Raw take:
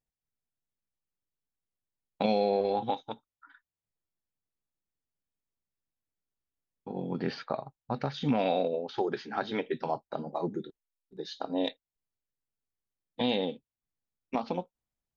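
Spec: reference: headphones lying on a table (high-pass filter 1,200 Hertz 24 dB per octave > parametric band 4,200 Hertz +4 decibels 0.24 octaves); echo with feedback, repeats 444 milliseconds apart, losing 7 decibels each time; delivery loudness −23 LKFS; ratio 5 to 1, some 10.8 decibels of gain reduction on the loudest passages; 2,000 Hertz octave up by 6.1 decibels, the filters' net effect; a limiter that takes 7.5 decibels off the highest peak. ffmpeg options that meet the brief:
ffmpeg -i in.wav -af "equalizer=frequency=2000:width_type=o:gain=8,acompressor=threshold=-34dB:ratio=5,alimiter=level_in=3dB:limit=-24dB:level=0:latency=1,volume=-3dB,highpass=frequency=1200:width=0.5412,highpass=frequency=1200:width=1.3066,equalizer=frequency=4200:width_type=o:width=0.24:gain=4,aecho=1:1:444|888|1332|1776|2220:0.447|0.201|0.0905|0.0407|0.0183,volume=24dB" out.wav

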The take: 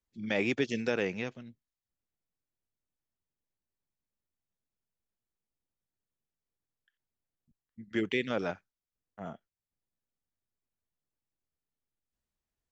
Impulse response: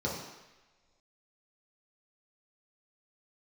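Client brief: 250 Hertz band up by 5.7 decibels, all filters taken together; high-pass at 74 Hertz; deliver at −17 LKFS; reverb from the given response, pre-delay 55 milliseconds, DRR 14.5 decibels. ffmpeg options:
-filter_complex "[0:a]highpass=74,equalizer=frequency=250:width_type=o:gain=7,asplit=2[link_01][link_02];[1:a]atrim=start_sample=2205,adelay=55[link_03];[link_02][link_03]afir=irnorm=-1:irlink=0,volume=-21.5dB[link_04];[link_01][link_04]amix=inputs=2:normalize=0,volume=13dB"

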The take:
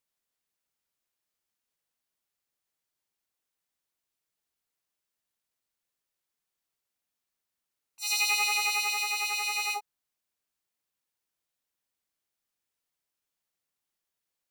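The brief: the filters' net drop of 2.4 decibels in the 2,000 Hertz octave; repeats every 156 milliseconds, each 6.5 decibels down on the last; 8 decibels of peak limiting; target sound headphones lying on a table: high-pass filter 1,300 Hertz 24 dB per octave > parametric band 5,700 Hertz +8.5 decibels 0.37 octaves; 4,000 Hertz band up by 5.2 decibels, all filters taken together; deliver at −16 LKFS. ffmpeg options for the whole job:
ffmpeg -i in.wav -af "equalizer=frequency=2000:width_type=o:gain=-6,equalizer=frequency=4000:width_type=o:gain=5.5,alimiter=limit=-20.5dB:level=0:latency=1,highpass=frequency=1300:width=0.5412,highpass=frequency=1300:width=1.3066,equalizer=frequency=5700:width_type=o:width=0.37:gain=8.5,aecho=1:1:156|312|468|624|780|936:0.473|0.222|0.105|0.0491|0.0231|0.0109,volume=9.5dB" out.wav

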